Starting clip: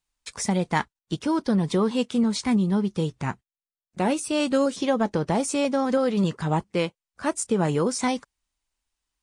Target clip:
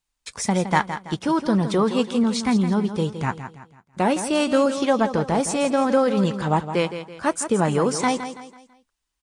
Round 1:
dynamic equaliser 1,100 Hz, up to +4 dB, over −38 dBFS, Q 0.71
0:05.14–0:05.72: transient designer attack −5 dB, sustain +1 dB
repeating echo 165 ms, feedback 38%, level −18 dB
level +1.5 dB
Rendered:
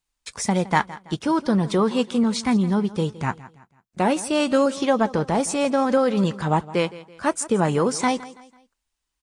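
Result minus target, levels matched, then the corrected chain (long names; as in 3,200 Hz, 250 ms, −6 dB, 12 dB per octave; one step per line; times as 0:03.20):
echo-to-direct −7.5 dB
dynamic equaliser 1,100 Hz, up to +4 dB, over −38 dBFS, Q 0.71
0:05.14–0:05.72: transient designer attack −5 dB, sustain +1 dB
repeating echo 165 ms, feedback 38%, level −10.5 dB
level +1.5 dB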